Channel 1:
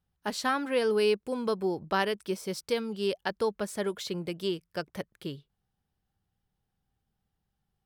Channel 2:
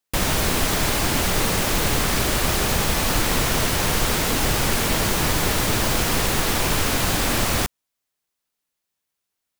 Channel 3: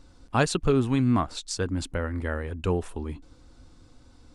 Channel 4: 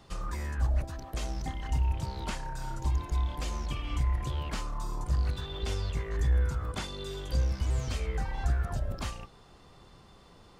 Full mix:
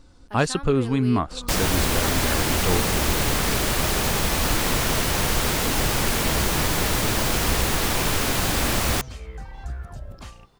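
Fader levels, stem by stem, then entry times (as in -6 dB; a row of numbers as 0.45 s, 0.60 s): -9.5 dB, -1.5 dB, +1.5 dB, -4.5 dB; 0.05 s, 1.35 s, 0.00 s, 1.20 s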